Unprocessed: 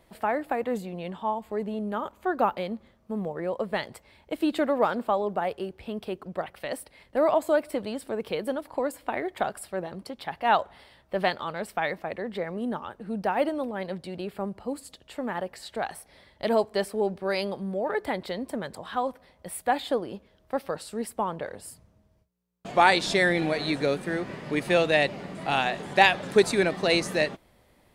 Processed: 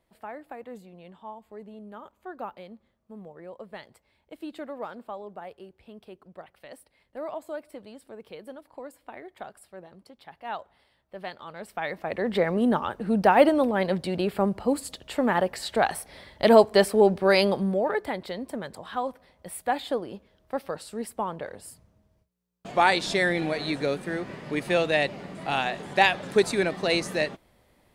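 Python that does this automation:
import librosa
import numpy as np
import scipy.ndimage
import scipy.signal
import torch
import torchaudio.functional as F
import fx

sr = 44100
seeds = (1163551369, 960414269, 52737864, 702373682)

y = fx.gain(x, sr, db=fx.line((11.21, -12.5), (11.92, -2.0), (12.32, 8.0), (17.59, 8.0), (18.09, -1.5)))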